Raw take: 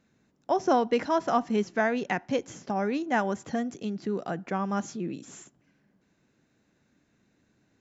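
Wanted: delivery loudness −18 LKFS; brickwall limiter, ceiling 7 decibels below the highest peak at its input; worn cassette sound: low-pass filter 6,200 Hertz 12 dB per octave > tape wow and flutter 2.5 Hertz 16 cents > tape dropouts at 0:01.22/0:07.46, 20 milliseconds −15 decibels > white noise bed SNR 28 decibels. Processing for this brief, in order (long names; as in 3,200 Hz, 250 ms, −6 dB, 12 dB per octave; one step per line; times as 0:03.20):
brickwall limiter −18 dBFS
low-pass filter 6,200 Hz 12 dB per octave
tape wow and flutter 2.5 Hz 16 cents
tape dropouts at 0:01.22/0:07.46, 20 ms −15 dB
white noise bed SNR 28 dB
level +12.5 dB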